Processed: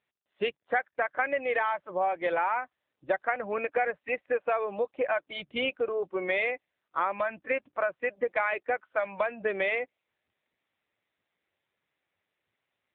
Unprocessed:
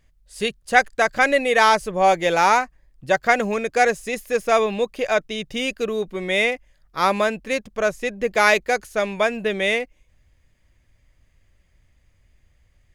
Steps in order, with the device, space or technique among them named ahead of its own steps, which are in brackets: spectral noise reduction 15 dB; voicemail (band-pass 390–2900 Hz; compression 8:1, threshold -26 dBFS, peak gain reduction 16.5 dB; trim +2 dB; AMR-NB 7.95 kbps 8 kHz)

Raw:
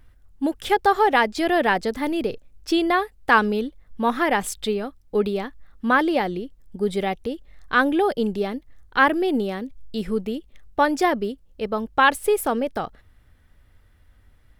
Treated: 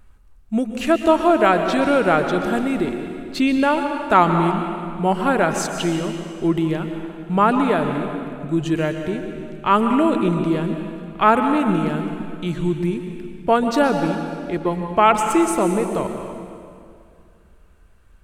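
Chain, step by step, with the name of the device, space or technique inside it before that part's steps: slowed and reverbed (tape speed -20%; reverberation RT60 2.4 s, pre-delay 112 ms, DRR 5.5 dB); trim +2 dB

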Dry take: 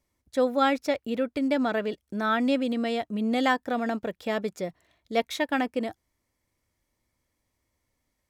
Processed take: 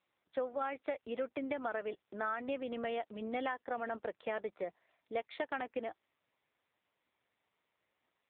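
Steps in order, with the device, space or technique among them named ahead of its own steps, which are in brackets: 0.77–1.57 s: dynamic bell 110 Hz, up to -7 dB, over -58 dBFS, Q 4.3; voicemail (band-pass 450–2800 Hz; compression 10:1, threshold -30 dBFS, peak gain reduction 12 dB; trim -2 dB; AMR-NB 6.7 kbps 8 kHz)

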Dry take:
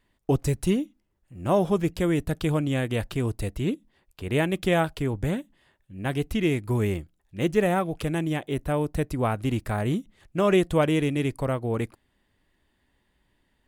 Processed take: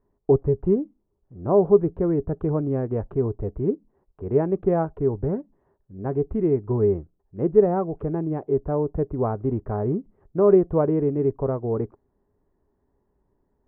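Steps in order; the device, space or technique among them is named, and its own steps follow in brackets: under water (low-pass 1.1 kHz 24 dB/octave; peaking EQ 410 Hz +11.5 dB 0.21 oct)

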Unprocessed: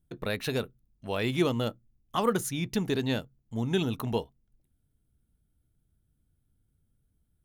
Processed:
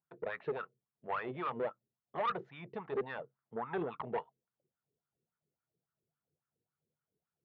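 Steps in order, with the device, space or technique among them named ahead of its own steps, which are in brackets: wah-wah guitar rig (wah-wah 3.6 Hz 400–1300 Hz, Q 4.7; valve stage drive 35 dB, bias 0.3; cabinet simulation 92–3500 Hz, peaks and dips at 150 Hz +8 dB, 280 Hz -7 dB, 1.9 kHz +4 dB); 3.21–3.95 s: peaking EQ 1.4 kHz +14 dB -> +6.5 dB 1.3 oct; trim +6.5 dB

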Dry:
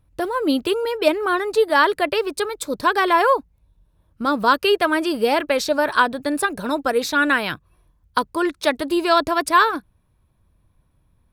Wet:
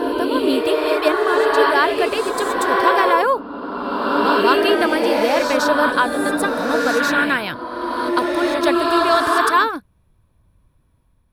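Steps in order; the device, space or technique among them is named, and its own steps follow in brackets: reverse reverb (reverse; reverberation RT60 2.7 s, pre-delay 101 ms, DRR -1 dB; reverse); trim -1 dB

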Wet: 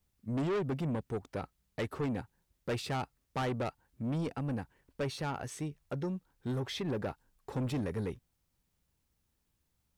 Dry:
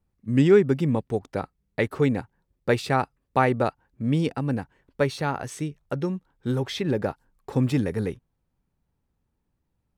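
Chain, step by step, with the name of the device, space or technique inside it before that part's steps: open-reel tape (saturation -23.5 dBFS, distortion -7 dB; peaking EQ 67 Hz +4 dB; white noise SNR 46 dB); trim -6 dB

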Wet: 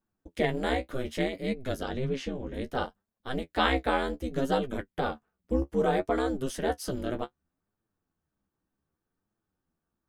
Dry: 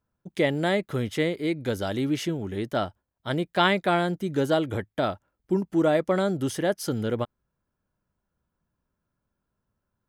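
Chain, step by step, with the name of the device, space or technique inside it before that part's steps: alien voice (ring modulator 130 Hz; flange 0.64 Hz, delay 8.7 ms, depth 7.7 ms, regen +32%); 1.83–2.54 s: distance through air 84 m; trim +2.5 dB

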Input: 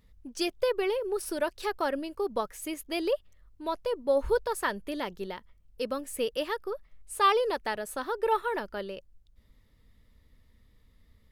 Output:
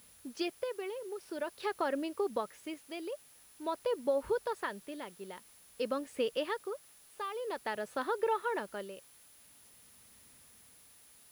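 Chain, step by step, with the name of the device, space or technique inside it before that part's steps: medium wave at night (band-pass 130–4100 Hz; compression, threshold -27 dBFS, peak gain reduction 9 dB; tremolo 0.49 Hz, depth 68%; whistle 10 kHz -61 dBFS; white noise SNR 24 dB)

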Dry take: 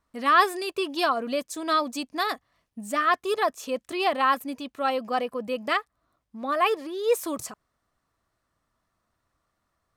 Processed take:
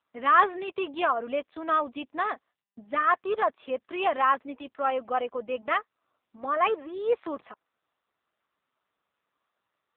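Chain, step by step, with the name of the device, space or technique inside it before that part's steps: 2.32–3.74 s: gate -55 dBFS, range -32 dB; telephone (band-pass 340–3200 Hz; AMR-NB 6.7 kbps 8 kHz)

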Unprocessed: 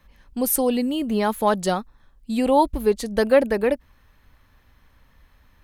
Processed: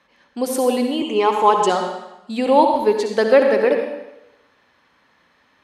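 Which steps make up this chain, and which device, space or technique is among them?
supermarket ceiling speaker (band-pass 290–6000 Hz; reverberation RT60 0.90 s, pre-delay 56 ms, DRR 4 dB); 1.01–1.70 s: rippled EQ curve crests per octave 0.71, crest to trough 12 dB; trim +3.5 dB

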